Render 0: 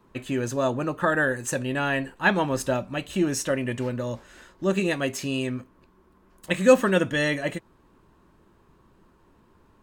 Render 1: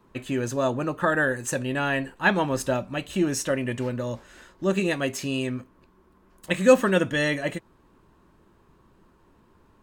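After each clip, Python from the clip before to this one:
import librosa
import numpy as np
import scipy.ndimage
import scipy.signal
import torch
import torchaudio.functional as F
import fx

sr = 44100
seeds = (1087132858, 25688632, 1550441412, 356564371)

y = x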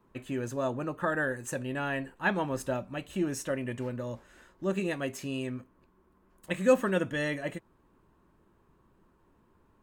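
y = fx.peak_eq(x, sr, hz=4600.0, db=-5.0, octaves=1.5)
y = y * 10.0 ** (-6.5 / 20.0)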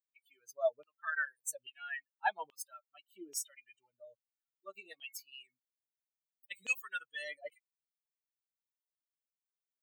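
y = fx.bin_expand(x, sr, power=3.0)
y = fx.filter_lfo_highpass(y, sr, shape='saw_down', hz=1.2, low_hz=440.0, high_hz=2900.0, q=5.7)
y = fx.riaa(y, sr, side='recording')
y = y * 10.0 ** (-7.0 / 20.0)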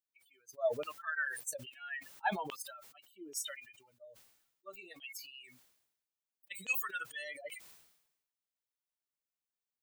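y = fx.sustainer(x, sr, db_per_s=63.0)
y = y * 10.0 ** (-1.5 / 20.0)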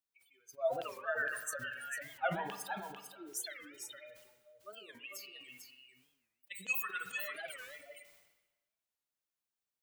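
y = x + 10.0 ** (-7.0 / 20.0) * np.pad(x, (int(447 * sr / 1000.0), 0))[:len(x)]
y = fx.rev_spring(y, sr, rt60_s=1.1, pass_ms=(36, 55), chirp_ms=65, drr_db=8.0)
y = fx.record_warp(y, sr, rpm=45.0, depth_cents=250.0)
y = y * 10.0 ** (-1.0 / 20.0)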